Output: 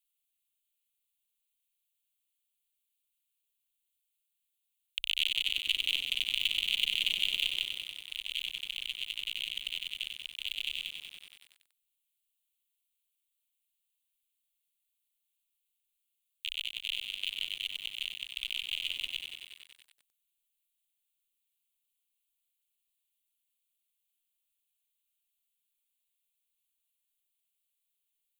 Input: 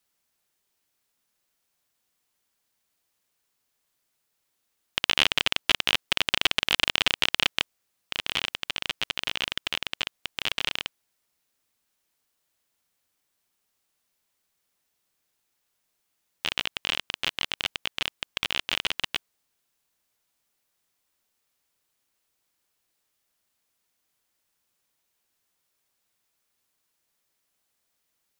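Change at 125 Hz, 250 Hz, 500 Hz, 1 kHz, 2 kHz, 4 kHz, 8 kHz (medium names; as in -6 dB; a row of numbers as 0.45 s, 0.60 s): under -15 dB, under -20 dB, under -25 dB, under -30 dB, -8.5 dB, -5.0 dB, -9.0 dB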